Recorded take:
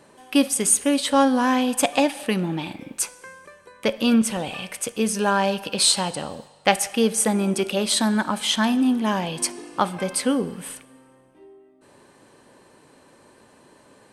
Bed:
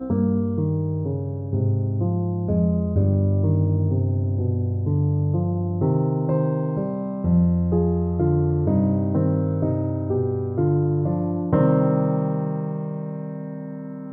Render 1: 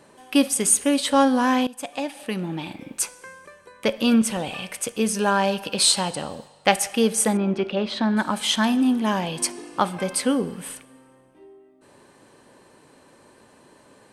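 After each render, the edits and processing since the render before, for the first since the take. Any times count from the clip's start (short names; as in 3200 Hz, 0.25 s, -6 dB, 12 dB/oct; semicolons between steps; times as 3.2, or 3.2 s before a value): 1.67–2.95 fade in linear, from -18.5 dB; 7.37–8.17 air absorption 270 m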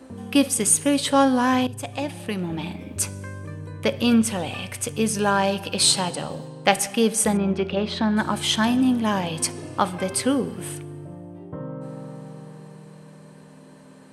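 add bed -16 dB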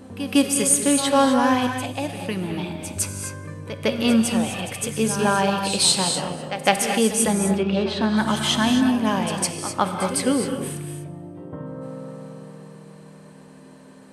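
pre-echo 0.156 s -12 dB; non-linear reverb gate 0.28 s rising, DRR 5 dB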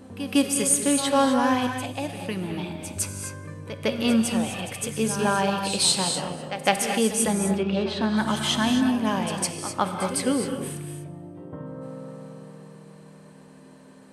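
gain -3 dB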